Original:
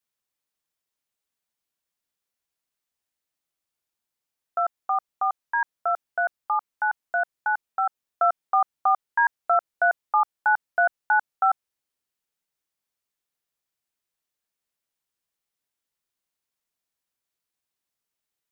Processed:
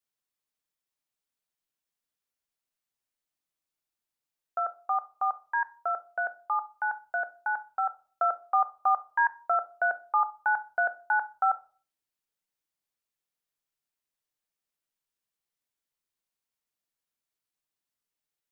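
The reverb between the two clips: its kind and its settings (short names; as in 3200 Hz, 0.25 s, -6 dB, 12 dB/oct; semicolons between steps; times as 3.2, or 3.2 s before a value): shoebox room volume 270 m³, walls furnished, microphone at 0.47 m; gain -4.5 dB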